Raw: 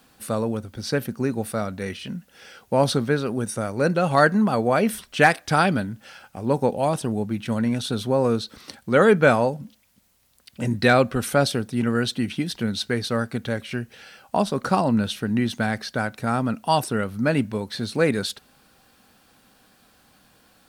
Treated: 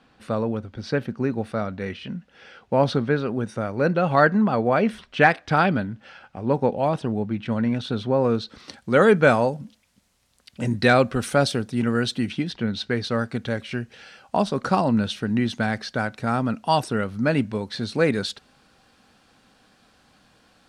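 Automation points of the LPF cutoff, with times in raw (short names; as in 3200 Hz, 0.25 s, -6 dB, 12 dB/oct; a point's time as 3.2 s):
8.2 s 3400 Hz
8.93 s 8800 Hz
12.21 s 8800 Hz
12.6 s 3300 Hz
13.3 s 6900 Hz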